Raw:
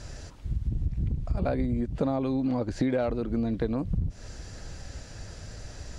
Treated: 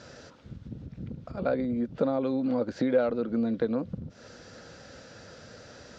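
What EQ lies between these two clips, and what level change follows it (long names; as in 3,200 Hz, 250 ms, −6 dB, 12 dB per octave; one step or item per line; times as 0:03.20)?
loudspeaker in its box 160–6,200 Hz, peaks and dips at 230 Hz +5 dB, 510 Hz +9 dB, 1,400 Hz +8 dB, 3,600 Hz +3 dB
−3.0 dB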